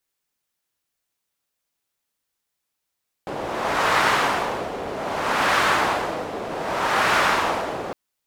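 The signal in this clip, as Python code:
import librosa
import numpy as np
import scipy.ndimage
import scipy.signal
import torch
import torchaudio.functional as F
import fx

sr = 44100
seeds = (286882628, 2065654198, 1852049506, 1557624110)

y = fx.wind(sr, seeds[0], length_s=4.66, low_hz=560.0, high_hz=1300.0, q=1.2, gusts=3, swing_db=11.5)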